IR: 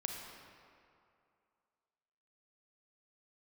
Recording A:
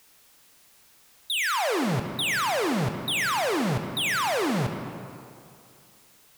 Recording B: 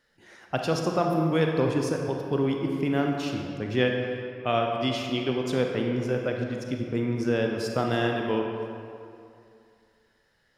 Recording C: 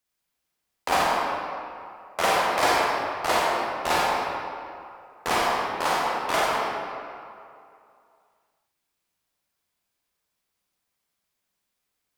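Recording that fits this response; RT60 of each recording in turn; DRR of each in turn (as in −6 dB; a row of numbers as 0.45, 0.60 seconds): B; 2.5, 2.5, 2.5 seconds; 5.5, 1.5, −5.5 decibels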